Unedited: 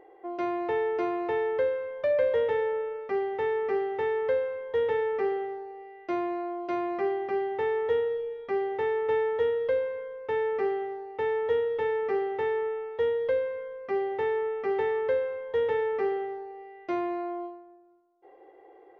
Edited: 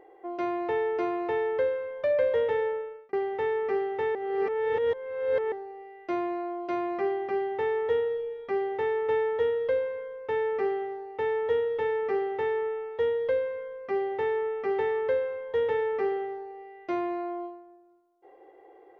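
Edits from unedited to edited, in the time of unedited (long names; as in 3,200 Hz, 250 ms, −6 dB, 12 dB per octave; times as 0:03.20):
0:02.67–0:03.13: fade out
0:04.15–0:05.52: reverse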